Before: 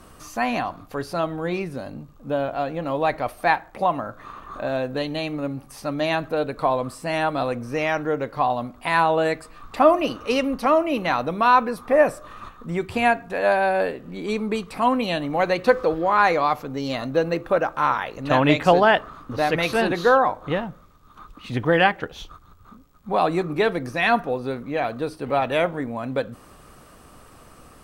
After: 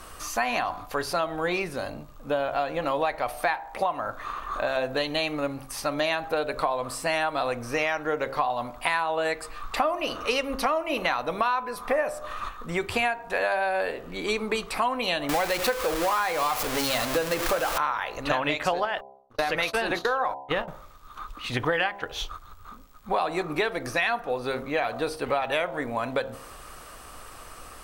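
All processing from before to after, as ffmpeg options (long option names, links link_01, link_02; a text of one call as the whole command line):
ffmpeg -i in.wav -filter_complex "[0:a]asettb=1/sr,asplit=3[link_01][link_02][link_03];[link_01]atrim=end=15.294[link_04];[link_02]atrim=start=15.29:end=17.78,asetpts=PTS-STARTPTS,afade=type=in:duration=0.004:curve=qsin,afade=type=out:start_time=2.486:duration=0.004:curve=qsin,aeval=exprs='val(0)+0.5*0.0891*sgn(val(0))':channel_layout=same,highshelf=frequency=9300:gain=5[link_05];[link_03]atrim=start=17.776[link_06];[link_04][link_05]acrossfade=duration=0.004:curve1=hsin:curve2=qsin[link_07];[link_07][link_06]acrossfade=duration=0.004:curve1=qsin:curve2=hsin,asettb=1/sr,asplit=3[link_08][link_09][link_10];[link_08]atrim=end=18.854[link_11];[link_09]atrim=start=18.85:end=20.68,asetpts=PTS-STARTPTS,afade=type=in:duration=0.004:curve=qsin,afade=type=out:start_time=1.826:duration=0.004:curve=qsin,agate=range=-48dB:threshold=-28dB:ratio=16:release=100:detection=peak,acompressor=threshold=-19dB:ratio=5:attack=3.2:release=140:knee=1:detection=peak[link_12];[link_10]atrim=start=20.676[link_13];[link_11][link_12]acrossfade=duration=0.004:curve1=hsin:curve2=qsin[link_14];[link_14][link_13]acrossfade=duration=0.004:curve1=qsin:curve2=hsin,equalizer=frequency=180:width=0.53:gain=-13,bandreject=frequency=67.02:width_type=h:width=4,bandreject=frequency=134.04:width_type=h:width=4,bandreject=frequency=201.06:width_type=h:width=4,bandreject=frequency=268.08:width_type=h:width=4,bandreject=frequency=335.1:width_type=h:width=4,bandreject=frequency=402.12:width_type=h:width=4,bandreject=frequency=469.14:width_type=h:width=4,bandreject=frequency=536.16:width_type=h:width=4,bandreject=frequency=603.18:width_type=h:width=4,bandreject=frequency=670.2:width_type=h:width=4,bandreject=frequency=737.22:width_type=h:width=4,bandreject=frequency=804.24:width_type=h:width=4,bandreject=frequency=871.26:width_type=h:width=4,bandreject=frequency=938.28:width_type=h:width=4,bandreject=frequency=1005.3:width_type=h:width=4,acompressor=threshold=-29dB:ratio=10,volume=7dB" out.wav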